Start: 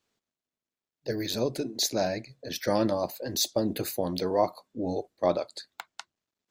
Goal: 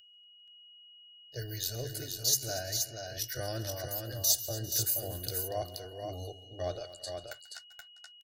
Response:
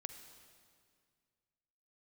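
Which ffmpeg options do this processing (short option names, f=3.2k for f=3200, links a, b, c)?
-filter_complex "[0:a]atempo=0.79,agate=range=-15dB:threshold=-46dB:ratio=16:detection=peak,aecho=1:1:2.7:0.4,aeval=exprs='val(0)+0.00631*sin(2*PI*2900*n/s)':c=same,firequalizer=gain_entry='entry(130,0);entry(190,-20);entry(280,-20);entry(610,-9);entry(990,-24);entry(1500,-3);entry(2300,-15);entry(5500,1);entry(13000,6)':delay=0.05:min_phase=1,asplit=2[a][b];[b]aecho=0:1:139|237|399|477:0.112|0.15|0.106|0.562[c];[a][c]amix=inputs=2:normalize=0"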